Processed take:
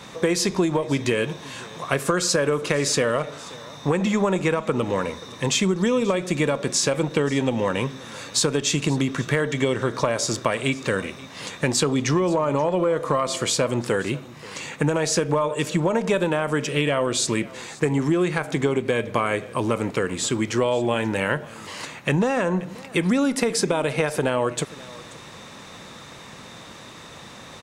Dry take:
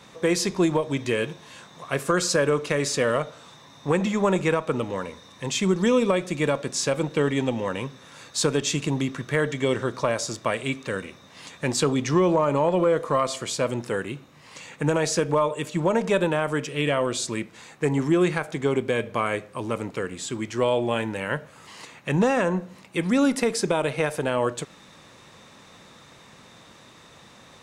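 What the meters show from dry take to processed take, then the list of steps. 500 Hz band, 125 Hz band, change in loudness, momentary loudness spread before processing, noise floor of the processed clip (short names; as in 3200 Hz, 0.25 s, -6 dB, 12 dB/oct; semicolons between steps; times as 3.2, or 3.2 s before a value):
+1.0 dB, +2.5 dB, +1.5 dB, 12 LU, -42 dBFS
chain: compressor, threshold -26 dBFS, peak gain reduction 10 dB; on a send: echo 0.531 s -20.5 dB; on the sum: gain +8 dB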